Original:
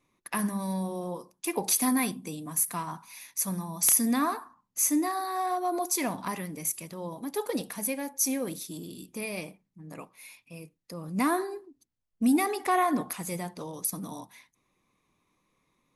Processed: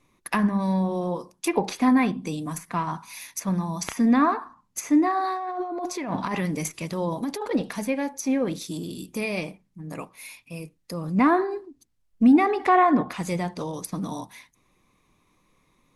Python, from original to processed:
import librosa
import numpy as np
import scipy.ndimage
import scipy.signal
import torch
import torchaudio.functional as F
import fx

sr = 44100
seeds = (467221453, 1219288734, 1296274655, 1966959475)

y = fx.env_lowpass_down(x, sr, base_hz=2300.0, full_db=-26.0)
y = fx.low_shelf(y, sr, hz=63.0, db=9.5)
y = fx.over_compress(y, sr, threshold_db=-35.0, ratio=-1.0, at=(5.24, 7.51))
y = y * librosa.db_to_amplitude(7.0)